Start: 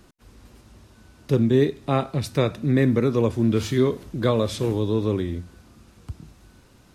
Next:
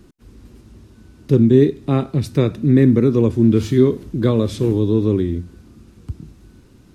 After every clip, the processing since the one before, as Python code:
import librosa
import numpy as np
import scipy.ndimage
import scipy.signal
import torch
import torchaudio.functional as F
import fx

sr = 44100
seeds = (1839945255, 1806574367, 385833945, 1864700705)

y = fx.low_shelf_res(x, sr, hz=470.0, db=7.0, q=1.5)
y = y * 10.0 ** (-1.0 / 20.0)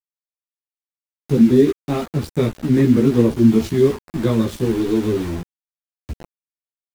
y = np.where(np.abs(x) >= 10.0 ** (-25.5 / 20.0), x, 0.0)
y = fx.chorus_voices(y, sr, voices=6, hz=1.3, base_ms=15, depth_ms=3.0, mix_pct=50)
y = y * 10.0 ** (1.5 / 20.0)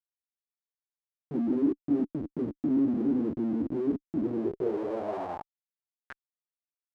y = fx.vibrato(x, sr, rate_hz=2.3, depth_cents=44.0)
y = fx.schmitt(y, sr, flips_db=-24.5)
y = fx.filter_sweep_bandpass(y, sr, from_hz=290.0, to_hz=2700.0, start_s=4.21, end_s=6.7, q=5.4)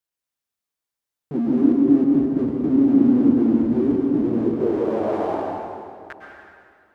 y = fx.rev_plate(x, sr, seeds[0], rt60_s=2.4, hf_ratio=0.8, predelay_ms=95, drr_db=-0.5)
y = y * 10.0 ** (6.5 / 20.0)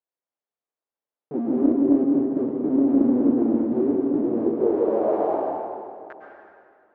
y = fx.bandpass_q(x, sr, hz=550.0, q=1.1)
y = fx.doppler_dist(y, sr, depth_ms=0.18)
y = y * 10.0 ** (2.5 / 20.0)